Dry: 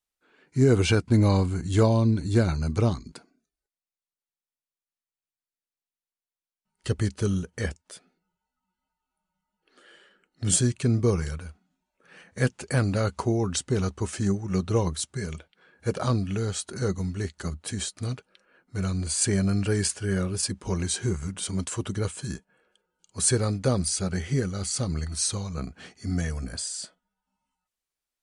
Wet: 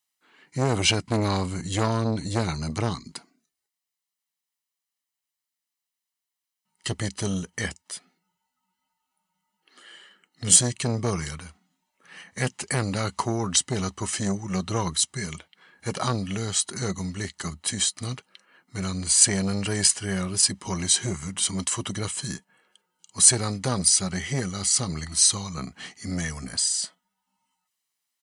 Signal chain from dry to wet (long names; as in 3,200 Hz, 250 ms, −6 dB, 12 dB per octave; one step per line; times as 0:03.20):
high-pass filter 130 Hz 12 dB per octave
tilt shelving filter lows −4 dB, about 1,200 Hz
comb filter 1 ms, depth 43%
saturating transformer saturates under 1,400 Hz
level +4 dB